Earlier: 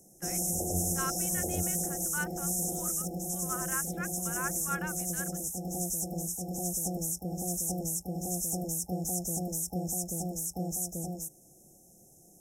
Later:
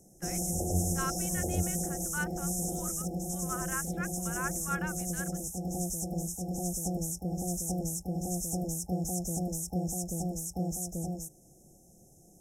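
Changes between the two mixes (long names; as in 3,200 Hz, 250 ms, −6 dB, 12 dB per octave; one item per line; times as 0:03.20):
background: add high-shelf EQ 11,000 Hz −9.5 dB
master: add low-shelf EQ 110 Hz +8.5 dB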